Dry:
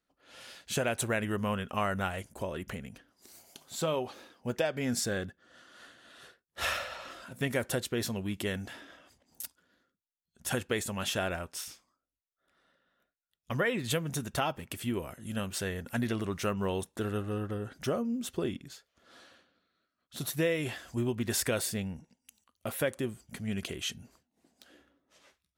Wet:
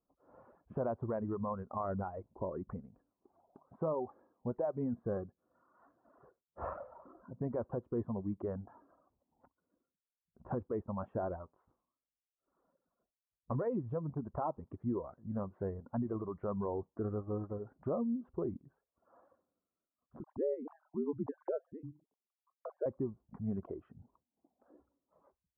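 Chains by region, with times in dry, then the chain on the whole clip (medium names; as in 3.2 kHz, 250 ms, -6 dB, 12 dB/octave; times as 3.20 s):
20.20–22.86 s: formants replaced by sine waves + ring modulator 77 Hz
whole clip: elliptic low-pass 1.1 kHz, stop band 80 dB; peak limiter -26 dBFS; reverb removal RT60 1.5 s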